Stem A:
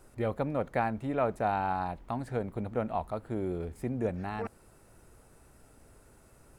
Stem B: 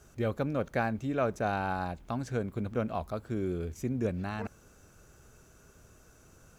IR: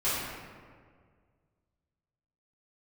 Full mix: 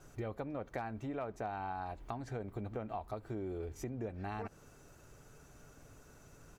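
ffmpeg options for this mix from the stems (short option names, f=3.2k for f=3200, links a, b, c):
-filter_complex "[0:a]lowpass=f=5.2k:w=0.5412,lowpass=f=5.2k:w=1.3066,asoftclip=type=hard:threshold=-18.5dB,volume=-3dB[a];[1:a]aecho=1:1:6.9:0.85,alimiter=limit=-23.5dB:level=0:latency=1,acompressor=threshold=-37dB:ratio=6,adelay=2.5,volume=-5dB[b];[a][b]amix=inputs=2:normalize=0,acompressor=threshold=-37dB:ratio=6"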